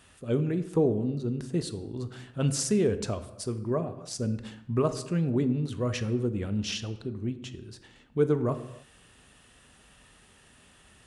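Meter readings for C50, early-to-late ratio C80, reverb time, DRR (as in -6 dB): 13.0 dB, 15.0 dB, not exponential, 10.0 dB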